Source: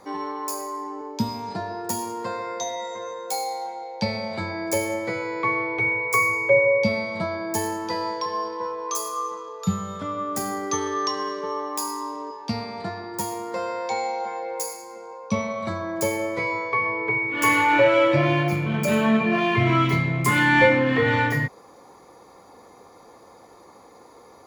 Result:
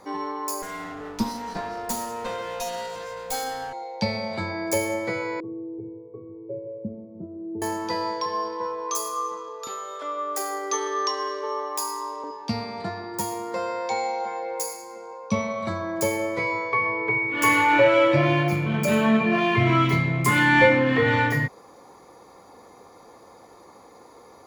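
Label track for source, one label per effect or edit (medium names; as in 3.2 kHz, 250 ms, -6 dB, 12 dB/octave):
0.620000	3.730000	comb filter that takes the minimum delay 4.1 ms
5.400000	7.620000	four-pole ladder low-pass 400 Hz, resonance 60%
9.670000	12.240000	steep high-pass 340 Hz 48 dB/octave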